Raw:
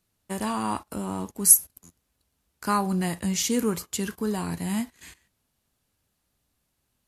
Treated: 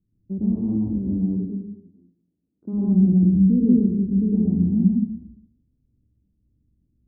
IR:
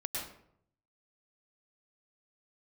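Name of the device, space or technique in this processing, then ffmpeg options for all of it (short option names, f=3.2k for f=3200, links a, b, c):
next room: -filter_complex "[0:a]asplit=3[a][b][c];[a]afade=t=out:st=1.32:d=0.02[d];[b]highpass=280,afade=t=in:st=1.32:d=0.02,afade=t=out:st=2.72:d=0.02[e];[c]afade=t=in:st=2.72:d=0.02[f];[d][e][f]amix=inputs=3:normalize=0,lowpass=f=300:w=0.5412,lowpass=f=300:w=1.3066[g];[1:a]atrim=start_sample=2205[h];[g][h]afir=irnorm=-1:irlink=0,volume=8.5dB"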